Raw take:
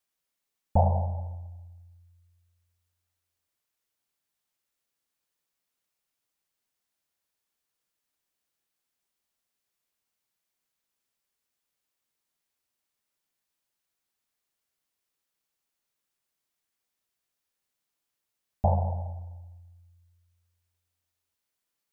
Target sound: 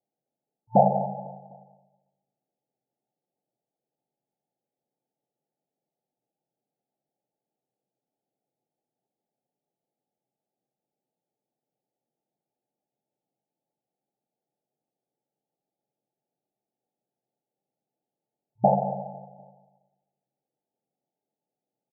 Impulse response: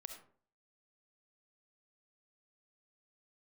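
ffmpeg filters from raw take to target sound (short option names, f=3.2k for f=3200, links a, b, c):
-filter_complex "[0:a]afftfilt=real='re*between(b*sr/4096,110,890)':imag='im*between(b*sr/4096,110,890)':win_size=4096:overlap=0.75,asplit=2[a][b];[b]aecho=0:1:251|502|753:0.1|0.045|0.0202[c];[a][c]amix=inputs=2:normalize=0,volume=8dB"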